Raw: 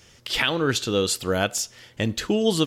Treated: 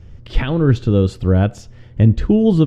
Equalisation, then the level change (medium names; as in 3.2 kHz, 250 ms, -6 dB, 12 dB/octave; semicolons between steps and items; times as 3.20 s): RIAA curve playback; tilt EQ -2 dB/octave; -1.0 dB